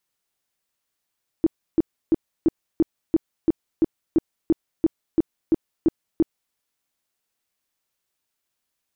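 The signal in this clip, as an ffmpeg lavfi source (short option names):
-f lavfi -i "aevalsrc='0.237*sin(2*PI*325*mod(t,0.34))*lt(mod(t,0.34),8/325)':d=5.1:s=44100"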